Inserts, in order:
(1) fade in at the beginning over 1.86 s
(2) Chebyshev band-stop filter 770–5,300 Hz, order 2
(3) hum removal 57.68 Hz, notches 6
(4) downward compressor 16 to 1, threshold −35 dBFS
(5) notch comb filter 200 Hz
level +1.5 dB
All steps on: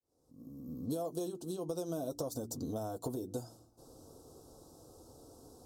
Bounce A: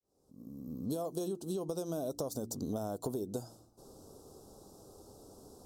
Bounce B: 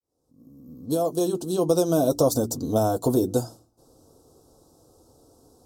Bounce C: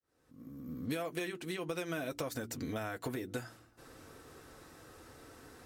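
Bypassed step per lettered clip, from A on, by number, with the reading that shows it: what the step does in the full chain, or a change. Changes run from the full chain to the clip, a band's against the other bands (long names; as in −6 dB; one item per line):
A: 5, change in integrated loudness +1.5 LU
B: 4, average gain reduction 11.5 dB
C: 2, 2 kHz band +23.5 dB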